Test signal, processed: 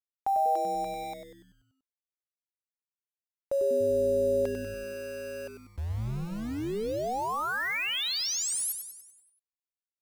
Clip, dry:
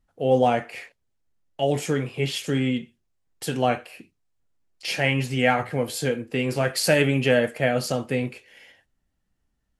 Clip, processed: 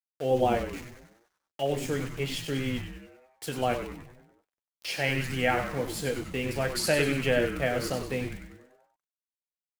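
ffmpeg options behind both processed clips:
-filter_complex "[0:a]equalizer=f=200:w=1.5:g=-4,aeval=exprs='val(0)*gte(abs(val(0)),0.0188)':c=same,asplit=8[a][b][c][d][e][f][g][h];[b]adelay=96,afreqshift=-150,volume=-7.5dB[i];[c]adelay=192,afreqshift=-300,volume=-12.9dB[j];[d]adelay=288,afreqshift=-450,volume=-18.2dB[k];[e]adelay=384,afreqshift=-600,volume=-23.6dB[l];[f]adelay=480,afreqshift=-750,volume=-28.9dB[m];[g]adelay=576,afreqshift=-900,volume=-34.3dB[n];[h]adelay=672,afreqshift=-1050,volume=-39.6dB[o];[a][i][j][k][l][m][n][o]amix=inputs=8:normalize=0,volume=-5.5dB"

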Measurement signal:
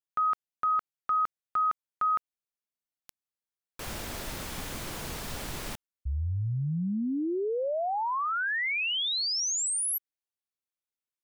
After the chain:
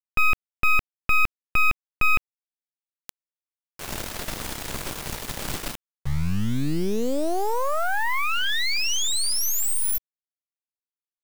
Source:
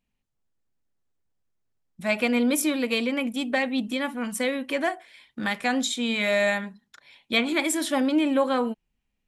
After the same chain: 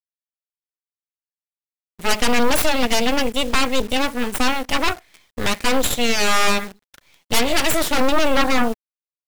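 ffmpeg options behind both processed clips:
-af "aeval=exprs='0.316*(cos(1*acos(clip(val(0)/0.316,-1,1)))-cos(1*PI/2))+0.00316*(cos(2*acos(clip(val(0)/0.316,-1,1)))-cos(2*PI/2))+0.141*(cos(3*acos(clip(val(0)/0.316,-1,1)))-cos(3*PI/2))+0.0141*(cos(7*acos(clip(val(0)/0.316,-1,1)))-cos(7*PI/2))+0.0891*(cos(8*acos(clip(val(0)/0.316,-1,1)))-cos(8*PI/2))':c=same,acrusher=bits=8:dc=4:mix=0:aa=0.000001,volume=5.5dB"

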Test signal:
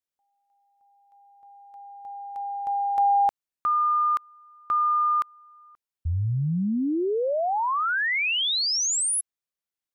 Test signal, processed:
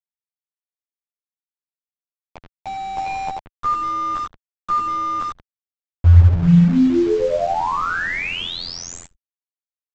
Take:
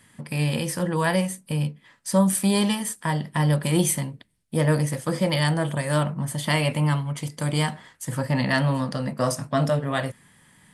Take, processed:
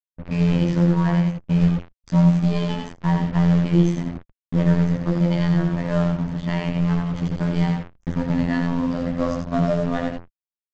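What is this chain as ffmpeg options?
-filter_complex "[0:a]aecho=1:1:88|176|264:0.562|0.135|0.0324,asplit=2[a][b];[b]aeval=exprs='(mod(7.08*val(0)+1,2)-1)/7.08':c=same,volume=-11.5dB[c];[a][c]amix=inputs=2:normalize=0,afftfilt=real='hypot(re,im)*cos(PI*b)':imag='0':win_size=2048:overlap=0.75,aresample=16000,acrusher=bits=5:mix=0:aa=0.000001,aresample=44100,equalizer=f=65:w=2.7:g=-9.5,dynaudnorm=f=180:g=3:m=12.5dB,aeval=exprs='sgn(val(0))*max(abs(val(0))-0.00631,0)':c=same,aemphasis=mode=reproduction:type=riaa,anlmdn=10,volume=-7.5dB"

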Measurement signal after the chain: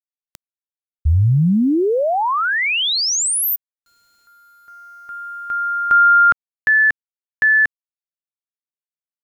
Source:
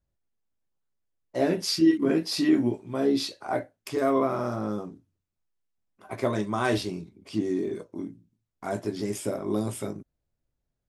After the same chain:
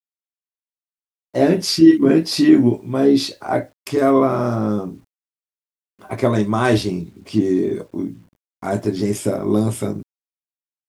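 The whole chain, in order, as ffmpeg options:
-af "acrusher=bits=10:mix=0:aa=0.000001,lowshelf=f=320:g=6,volume=7dB"

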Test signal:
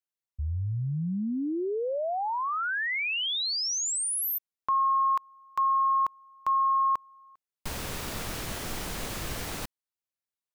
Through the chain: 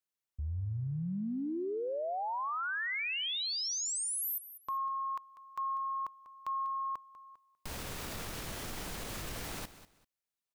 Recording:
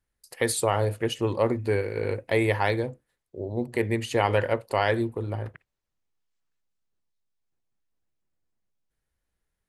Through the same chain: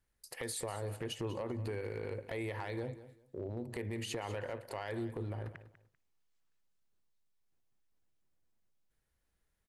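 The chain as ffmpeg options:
-filter_complex "[0:a]acompressor=threshold=-34dB:ratio=5:attack=0.14:release=89:knee=6:detection=rms,asplit=2[a][b];[b]aecho=0:1:195|390:0.188|0.0414[c];[a][c]amix=inputs=2:normalize=0"

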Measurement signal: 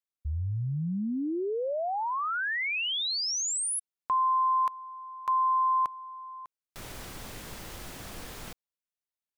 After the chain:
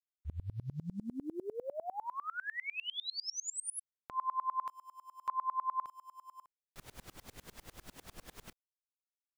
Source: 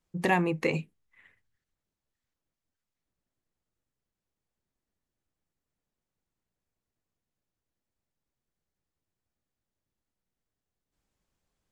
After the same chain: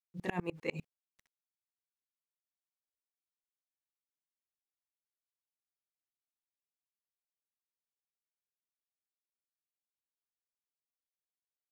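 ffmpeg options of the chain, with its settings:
-af "aeval=exprs='val(0)*gte(abs(val(0)),0.00299)':c=same,aeval=exprs='val(0)*pow(10,-30*if(lt(mod(-10*n/s,1),2*abs(-10)/1000),1-mod(-10*n/s,1)/(2*abs(-10)/1000),(mod(-10*n/s,1)-2*abs(-10)/1000)/(1-2*abs(-10)/1000))/20)':c=same,volume=-2.5dB"

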